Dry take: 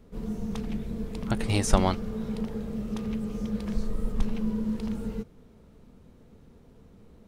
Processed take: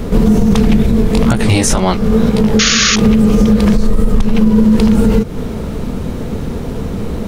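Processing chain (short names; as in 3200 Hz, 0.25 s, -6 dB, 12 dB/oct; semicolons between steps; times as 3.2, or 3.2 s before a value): compressor 10:1, threshold -36 dBFS, peak gain reduction 24 dB; 0.86–3.02 chorus 2 Hz, delay 15.5 ms, depth 8 ms; 2.59–2.96 painted sound noise 1100–7000 Hz -36 dBFS; maximiser +34.5 dB; gain -1 dB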